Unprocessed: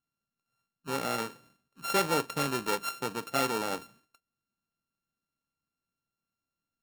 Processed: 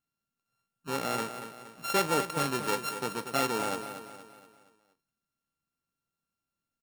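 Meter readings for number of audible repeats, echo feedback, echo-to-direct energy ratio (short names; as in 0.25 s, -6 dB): 4, 45%, -9.0 dB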